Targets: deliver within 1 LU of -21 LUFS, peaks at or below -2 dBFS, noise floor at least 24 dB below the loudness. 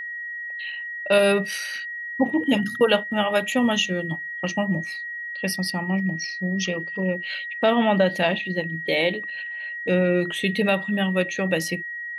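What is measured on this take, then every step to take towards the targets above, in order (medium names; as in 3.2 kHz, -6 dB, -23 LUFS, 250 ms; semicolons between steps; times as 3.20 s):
steady tone 1.9 kHz; tone level -30 dBFS; loudness -23.5 LUFS; peak level -7.0 dBFS; loudness target -21.0 LUFS
-> band-stop 1.9 kHz, Q 30; trim +2.5 dB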